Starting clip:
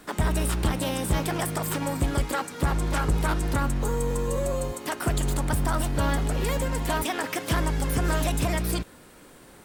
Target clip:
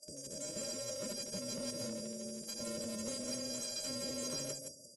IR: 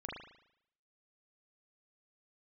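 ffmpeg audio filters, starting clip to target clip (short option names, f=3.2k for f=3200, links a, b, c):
-filter_complex "[0:a]asplit=2[a][b];[b]aecho=0:1:334|668|1002:0.398|0.0955|0.0229[c];[a][c]amix=inputs=2:normalize=0,afftfilt=real='hypot(re,im)*cos(PI*b)':imag='0':win_size=512:overlap=0.75,highpass=130,lowpass=7.6k,highshelf=f=2.6k:g=-5,dynaudnorm=f=700:g=3:m=10dB,asetrate=103194,aresample=44100,afftfilt=real='re*(1-between(b*sr/4096,630,4600))':imag='im*(1-between(b*sr/4096,630,4600))':win_size=4096:overlap=0.75,acrossover=split=470|3000[d][e][f];[e]acompressor=threshold=-36dB:ratio=2.5[g];[d][g][f]amix=inputs=3:normalize=0,atempo=0.83,adynamicequalizer=threshold=0.00112:dfrequency=280:dqfactor=5.5:tfrequency=280:tqfactor=5.5:attack=5:release=100:ratio=0.375:range=4:mode=cutabove:tftype=bell,volume=34dB,asoftclip=hard,volume=-34dB,volume=-3dB" -ar 32000 -c:a aac -b:a 32k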